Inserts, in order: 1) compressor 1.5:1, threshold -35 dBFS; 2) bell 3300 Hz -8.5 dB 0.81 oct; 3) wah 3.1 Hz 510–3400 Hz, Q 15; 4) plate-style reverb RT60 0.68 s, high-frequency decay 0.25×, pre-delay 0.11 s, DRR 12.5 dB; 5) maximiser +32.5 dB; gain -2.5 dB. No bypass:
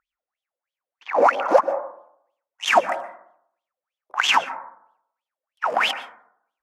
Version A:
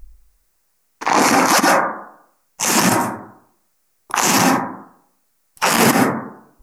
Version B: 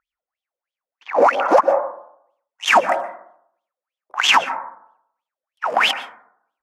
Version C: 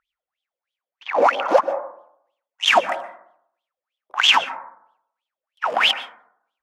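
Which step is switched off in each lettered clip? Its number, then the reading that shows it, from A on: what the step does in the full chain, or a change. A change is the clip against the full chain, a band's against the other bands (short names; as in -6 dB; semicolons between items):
3, crest factor change -6.0 dB; 1, mean gain reduction 4.0 dB; 2, 4 kHz band +7.0 dB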